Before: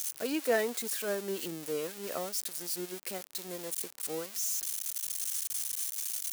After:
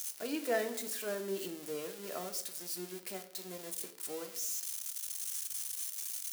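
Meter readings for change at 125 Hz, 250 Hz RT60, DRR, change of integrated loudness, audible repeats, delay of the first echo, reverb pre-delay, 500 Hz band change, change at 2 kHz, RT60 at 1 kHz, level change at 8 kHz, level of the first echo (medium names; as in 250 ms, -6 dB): -4.0 dB, 0.75 s, 6.0 dB, -4.5 dB, no echo, no echo, 3 ms, -4.0 dB, -4.5 dB, 0.60 s, -4.5 dB, no echo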